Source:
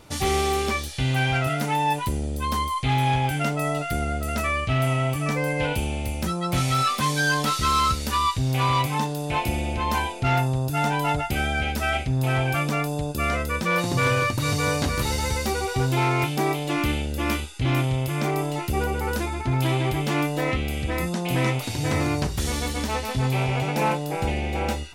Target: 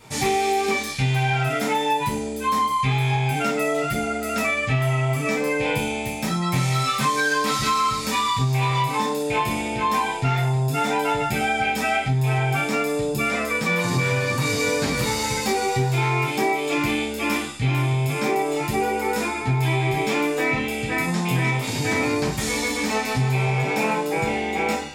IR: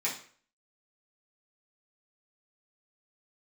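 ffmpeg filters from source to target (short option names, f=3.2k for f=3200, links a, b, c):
-filter_complex "[1:a]atrim=start_sample=2205[a];[0:a][a]afir=irnorm=-1:irlink=0,acompressor=threshold=-18dB:ratio=6"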